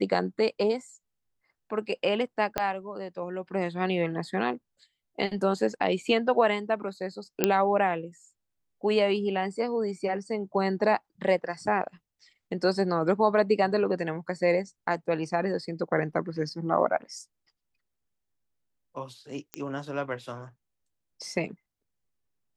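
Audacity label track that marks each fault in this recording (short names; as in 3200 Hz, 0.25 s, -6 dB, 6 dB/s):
2.580000	2.580000	pop -11 dBFS
7.440000	7.440000	pop -6 dBFS
19.540000	19.540000	pop -17 dBFS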